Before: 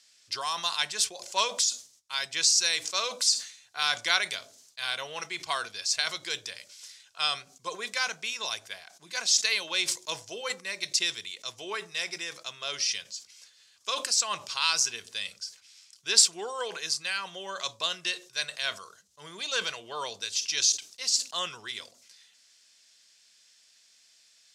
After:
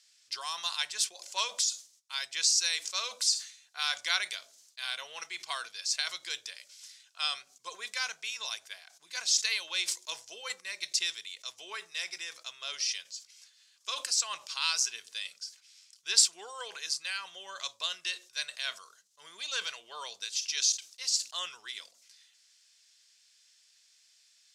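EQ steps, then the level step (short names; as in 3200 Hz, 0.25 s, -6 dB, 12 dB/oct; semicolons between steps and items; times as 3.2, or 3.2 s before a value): HPF 1300 Hz 6 dB/oct; -3.0 dB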